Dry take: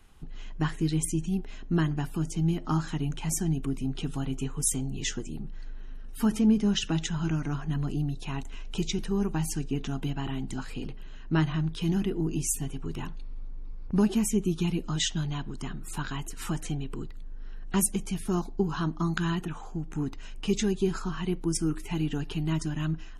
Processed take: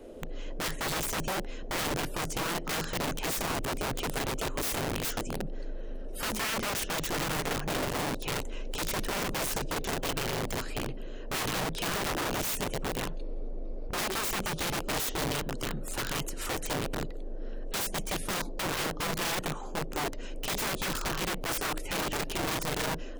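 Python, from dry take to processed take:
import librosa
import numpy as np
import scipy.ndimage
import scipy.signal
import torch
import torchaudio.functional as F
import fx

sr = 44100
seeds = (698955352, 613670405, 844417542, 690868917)

y = (np.mod(10.0 ** (28.0 / 20.0) * x + 1.0, 2.0) - 1.0) / 10.0 ** (28.0 / 20.0)
y = fx.dmg_noise_band(y, sr, seeds[0], low_hz=220.0, high_hz=600.0, level_db=-49.0)
y = y * 10.0 ** (1.5 / 20.0)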